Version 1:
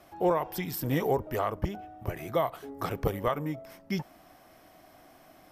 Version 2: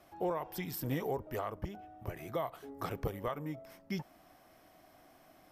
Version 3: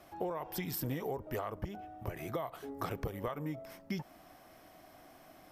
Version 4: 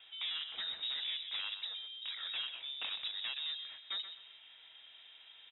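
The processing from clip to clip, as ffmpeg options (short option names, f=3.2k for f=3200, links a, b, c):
-af "alimiter=limit=-19.5dB:level=0:latency=1:release=316,volume=-5.5dB"
-af "acompressor=threshold=-37dB:ratio=10,volume=4dB"
-af "aeval=exprs='0.0211*(abs(mod(val(0)/0.0211+3,4)-2)-1)':c=same,aecho=1:1:127|254|381:0.316|0.0885|0.0248,lowpass=f=3.3k:t=q:w=0.5098,lowpass=f=3.3k:t=q:w=0.6013,lowpass=f=3.3k:t=q:w=0.9,lowpass=f=3.3k:t=q:w=2.563,afreqshift=-3900"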